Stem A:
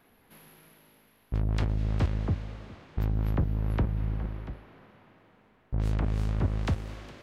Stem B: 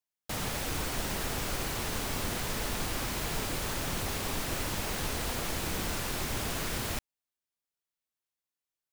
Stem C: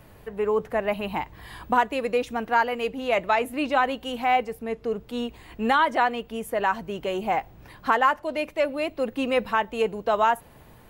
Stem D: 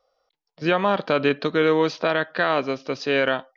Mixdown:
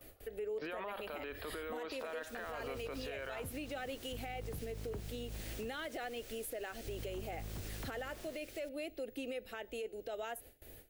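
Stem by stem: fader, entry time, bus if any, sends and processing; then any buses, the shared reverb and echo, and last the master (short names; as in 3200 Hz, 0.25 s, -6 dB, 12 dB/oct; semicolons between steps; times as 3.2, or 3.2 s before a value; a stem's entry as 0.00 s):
-10.0 dB, 1.15 s, bus A, no send, compressor 2.5:1, threshold -33 dBFS, peak gain reduction 8.5 dB
-13.0 dB, 1.70 s, bus B, no send, dry
-2.0 dB, 0.00 s, bus B, no send, gate with hold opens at -40 dBFS; high shelf 9000 Hz +10.5 dB
-1.0 dB, 0.00 s, bus A, no send, HPF 470 Hz 12 dB/oct; limiter -19 dBFS, peak gain reduction 10.5 dB
bus A: 0.0 dB, LPF 3000 Hz; compressor 2.5:1, threshold -36 dBFS, peak gain reduction 7.5 dB
bus B: 0.0 dB, fixed phaser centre 420 Hz, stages 4; compressor 4:1, threshold -38 dBFS, peak gain reduction 14.5 dB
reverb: off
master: limiter -33.5 dBFS, peak gain reduction 11.5 dB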